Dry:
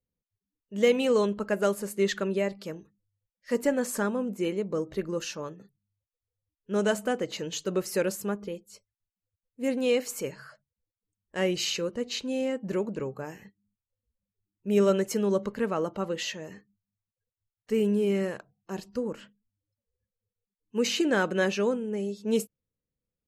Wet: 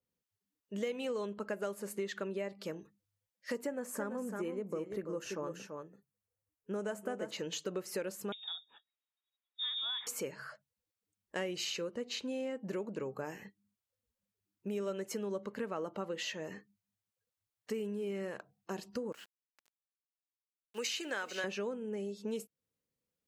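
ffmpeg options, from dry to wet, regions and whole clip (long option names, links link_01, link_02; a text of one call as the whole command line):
ffmpeg -i in.wav -filter_complex "[0:a]asettb=1/sr,asplit=3[link_01][link_02][link_03];[link_01]atrim=end=3.664[link_04];[link_02]atrim=start=3.66:end=7.31,asetpts=PTS-STARTPTS,afade=type=in:duration=0.004:curve=qsin,afade=type=out:start_time=3.646:duration=0.004:curve=qsin,equalizer=frequency=3900:width_type=o:width=1.2:gain=-10,aecho=1:1:336:0.355,atrim=end_sample=160965[link_05];[link_03]atrim=start=7.306[link_06];[link_04][link_05]acrossfade=duration=0.004:curve1=hsin:curve2=qsin[link_07];[link_07][link_06]acrossfade=duration=0.004:curve1=qsin:curve2=hsin,asettb=1/sr,asplit=3[link_08][link_09][link_10];[link_08]atrim=end=8.324[link_11];[link_09]atrim=start=8.32:end=10.07,asetpts=PTS-STARTPTS,afade=type=in:duration=0.004:curve=qsin,afade=type=out:start_time=1.746:duration=0.004:curve=qsin,highpass=150,acompressor=threshold=-34dB:ratio=2.5:attack=3.2:release=140:knee=1:detection=peak,lowpass=frequency=3300:width_type=q:width=0.5098,lowpass=frequency=3300:width_type=q:width=0.6013,lowpass=frequency=3300:width_type=q:width=0.9,lowpass=frequency=3300:width_type=q:width=2.563,afreqshift=-3900[link_12];[link_10]atrim=start=10.066[link_13];[link_11][link_12]acrossfade=duration=0.004:curve1=hsin:curve2=qsin[link_14];[link_14][link_13]acrossfade=duration=0.004:curve1=qsin:curve2=hsin,asettb=1/sr,asplit=3[link_15][link_16][link_17];[link_15]atrim=end=19.124[link_18];[link_16]atrim=start=19.12:end=21.44,asetpts=PTS-STARTPTS,afade=type=in:duration=0.004:curve=qsin,afade=type=out:start_time=2.316:duration=0.004:curve=qsin,highpass=frequency=1500:poles=1,aecho=1:1:444:0.251,atrim=end_sample=102312,aeval=exprs='val(0)*gte(abs(val(0)),0.00211)':channel_layout=same[link_19];[link_17]atrim=start=21.436[link_20];[link_18][link_19]acrossfade=duration=0.004:curve1=hsin:curve2=qsin[link_21];[link_21][link_20]acrossfade=duration=0.004:curve1=qsin:curve2=hsin,acompressor=threshold=-36dB:ratio=6,highpass=frequency=230:poles=1,adynamicequalizer=threshold=0.00141:dfrequency=3300:dqfactor=0.7:tfrequency=3300:tqfactor=0.7:attack=5:release=100:ratio=0.375:range=2:mode=cutabove:tftype=highshelf,volume=2dB" out.wav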